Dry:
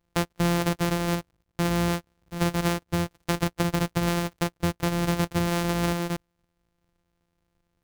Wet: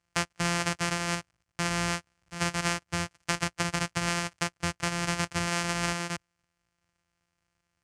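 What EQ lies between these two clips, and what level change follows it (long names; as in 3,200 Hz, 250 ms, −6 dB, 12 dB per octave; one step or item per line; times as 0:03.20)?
loudspeaker in its box 100–9,000 Hz, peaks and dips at 450 Hz −6 dB, 910 Hz −3 dB, 3,700 Hz −8 dB
parametric band 270 Hz −14.5 dB 2.9 octaves
+5.0 dB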